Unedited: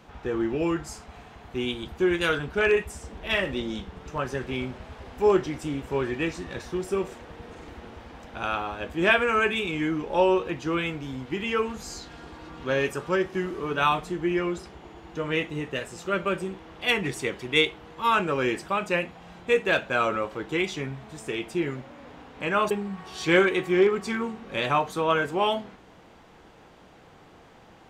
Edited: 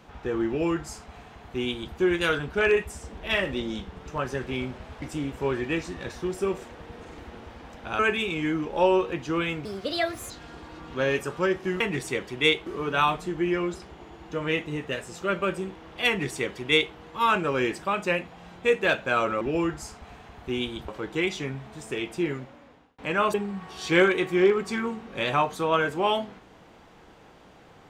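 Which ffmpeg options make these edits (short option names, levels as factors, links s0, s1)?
-filter_complex "[0:a]asplit=10[s0][s1][s2][s3][s4][s5][s6][s7][s8][s9];[s0]atrim=end=5.022[s10];[s1]atrim=start=5.518:end=8.492[s11];[s2]atrim=start=9.358:end=11.024[s12];[s3]atrim=start=11.02:end=12,asetpts=PTS-STARTPTS,asetrate=66150,aresample=44100[s13];[s4]atrim=start=11.996:end=13.502[s14];[s5]atrim=start=16.918:end=17.782[s15];[s6]atrim=start=13.498:end=20.252[s16];[s7]atrim=start=0.478:end=1.952[s17];[s8]atrim=start=20.248:end=22.35,asetpts=PTS-STARTPTS,afade=t=out:st=1.412:d=0.69[s18];[s9]atrim=start=22.35,asetpts=PTS-STARTPTS,afade=t=in:d=0.004:c=hsin[s19];[s10][s11]acrossfade=d=0.004:c1=hsin:c2=hsin[s20];[s20][s12]acrossfade=d=0.004:c1=hsin:c2=hsin[s21];[s21][s13]acrossfade=d=0.004:c1=hsin:c2=hsin[s22];[s22][s14]acrossfade=d=0.004:c1=hsin:c2=hsin[s23];[s23][s15]acrossfade=d=0.004:c1=hsin:c2=hsin[s24];[s24][s16]acrossfade=d=0.004:c1=hsin:c2=hsin[s25];[s25][s17]acrossfade=d=0.004:c1=hsin:c2=hsin[s26];[s18][s19]concat=n=2:v=0:a=1[s27];[s26][s27]acrossfade=d=0.004:c1=hsin:c2=hsin"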